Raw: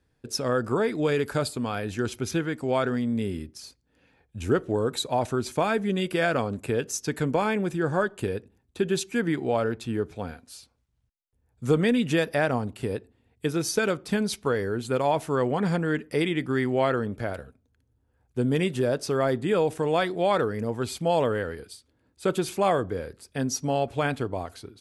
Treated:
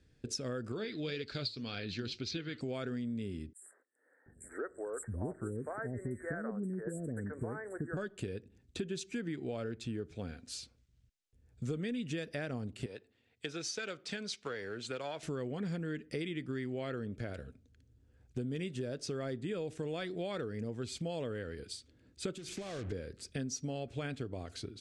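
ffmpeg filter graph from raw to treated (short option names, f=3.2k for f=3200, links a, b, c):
-filter_complex "[0:a]asettb=1/sr,asplit=3[a][b][c];[a]atrim=end=0.724[d];[b]atrim=start=0.72:end=2.61,asetpts=PTS-STARTPTS,afade=t=in:d=0.004:c=qsin,afade=t=out:st=1.886:d=0.004:c=qsin,lowpass=f=4.3k:t=q:w=7.5,equalizer=f=2.3k:w=1.9:g=3.5,flanger=delay=1.1:depth=8.4:regen=74:speed=1.9:shape=triangular[e];[c]atrim=start=2.606[f];[d][e]acrossfade=d=0.004:c1=hsin:c2=qsin[g];[g][f]acrossfade=d=0.004:c1=qsin:c2=hsin,asettb=1/sr,asplit=3[h][i][j];[h]atrim=end=3.534[k];[i]atrim=start=3.53:end=7.97,asetpts=PTS-STARTPTS,afade=t=in:d=0.004:c=qsin,afade=t=out:st=4.436:d=0.004:c=qsin,asuperstop=centerf=4000:order=20:qfactor=0.68,acrossover=split=470|2600[l][m][n];[m]adelay=90[o];[l]adelay=730[p];[p][o][n]amix=inputs=3:normalize=0,atrim=end_sample=195804[q];[j]atrim=start=7.966[r];[k][q]acrossfade=d=0.004:c1=hsin:c2=qsin[s];[s][r]acrossfade=d=0.004:c1=qsin:c2=hsin,asettb=1/sr,asplit=3[t][u][v];[t]atrim=end=12.864[w];[u]atrim=start=12.86:end=15.23,asetpts=PTS-STARTPTS,afade=t=in:d=0.004:c=qsin,afade=t=out:st=2.366:d=0.004:c=qsin,aeval=exprs='if(lt(val(0),0),0.708*val(0),val(0))':c=same,highpass=100,acrossover=split=550 7600:gain=0.224 1 0.224[x][y][z];[x][y][z]amix=inputs=3:normalize=0[aa];[v]atrim=start=15.226[ab];[w][aa]acrossfade=d=0.004:c1=hsin:c2=qsin[ac];[ac][ab]acrossfade=d=0.004:c1=qsin:c2=hsin,asettb=1/sr,asplit=3[ad][ae][af];[ad]atrim=end=22.374[ag];[ae]atrim=start=22.37:end=22.92,asetpts=PTS-STARTPTS,afade=t=in:d=0.004:c=qsin,afade=t=out:st=0.546:d=0.004:c=qsin,asubboost=boost=6.5:cutoff=140,acompressor=threshold=-33dB:ratio=10:attack=3.2:release=140:knee=1:detection=peak,acrusher=bits=6:mix=0:aa=0.5[ah];[af]atrim=start=22.916[ai];[ag][ah]acrossfade=d=0.004:c1=hsin:c2=qsin[aj];[aj][ai]acrossfade=d=0.004:c1=qsin:c2=hsin,lowpass=f=8.3k:w=0.5412,lowpass=f=8.3k:w=1.3066,equalizer=f=920:t=o:w=1.1:g=-13.5,acompressor=threshold=-43dB:ratio=4,volume=4.5dB"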